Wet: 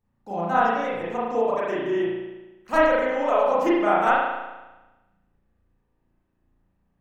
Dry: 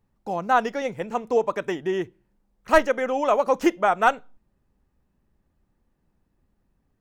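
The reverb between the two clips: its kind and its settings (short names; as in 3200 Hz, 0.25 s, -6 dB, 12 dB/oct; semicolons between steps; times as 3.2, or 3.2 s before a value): spring tank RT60 1.1 s, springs 35 ms, chirp 60 ms, DRR -8.5 dB; gain -8.5 dB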